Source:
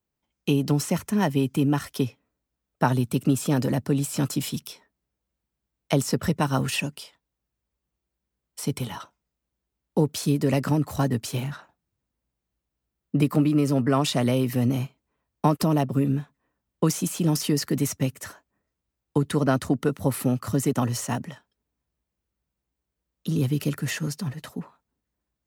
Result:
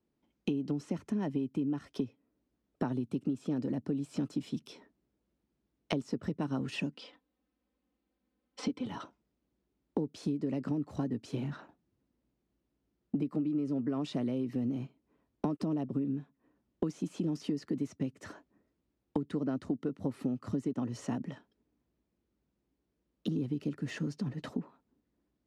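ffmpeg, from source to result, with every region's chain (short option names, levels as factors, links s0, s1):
-filter_complex "[0:a]asettb=1/sr,asplit=3[s0][s1][s2];[s0]atrim=end=6.944[s3];[s1]atrim=start=6.94:end=8.86,asetpts=PTS-STARTPTS,afade=t=in:d=0.004:c=qsin,afade=t=out:st=1.916:d=0.004:c=qsin,lowpass=4600,lowshelf=f=230:g=-8,aecho=1:1:3.9:0.93,atrim=end_sample=84672[s4];[s2]atrim=start=8.856[s5];[s3][s4]acrossfade=d=0.004:c1=hsin:c2=qsin[s6];[s6][s5]acrossfade=d=0.004:c1=qsin:c2=hsin,lowpass=5300,equalizer=f=290:t=o:w=1.6:g=13.5,acompressor=threshold=0.0282:ratio=5,volume=0.794"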